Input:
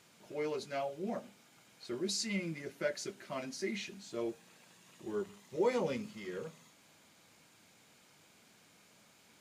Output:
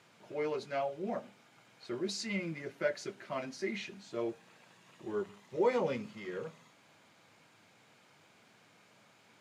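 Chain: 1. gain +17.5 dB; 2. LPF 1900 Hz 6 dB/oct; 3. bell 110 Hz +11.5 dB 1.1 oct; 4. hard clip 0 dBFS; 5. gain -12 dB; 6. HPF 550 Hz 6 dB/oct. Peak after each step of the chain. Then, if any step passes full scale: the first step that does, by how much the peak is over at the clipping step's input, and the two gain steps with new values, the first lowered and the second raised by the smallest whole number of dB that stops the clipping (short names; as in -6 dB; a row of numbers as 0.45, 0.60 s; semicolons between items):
-2.5, -3.0, -2.0, -2.0, -14.0, -18.5 dBFS; no overload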